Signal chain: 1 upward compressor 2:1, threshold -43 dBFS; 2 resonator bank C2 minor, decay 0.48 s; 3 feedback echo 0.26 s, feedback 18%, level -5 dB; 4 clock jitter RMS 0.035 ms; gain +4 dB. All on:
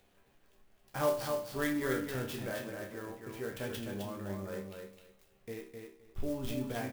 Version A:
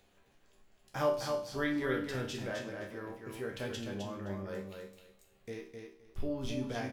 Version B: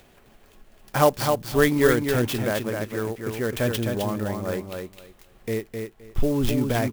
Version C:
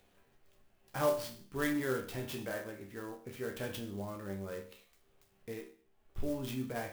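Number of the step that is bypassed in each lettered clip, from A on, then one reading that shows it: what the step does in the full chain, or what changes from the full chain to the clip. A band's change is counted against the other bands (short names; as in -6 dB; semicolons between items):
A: 4, 8 kHz band -3.0 dB; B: 2, 125 Hz band +2.5 dB; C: 3, momentary loudness spread change -1 LU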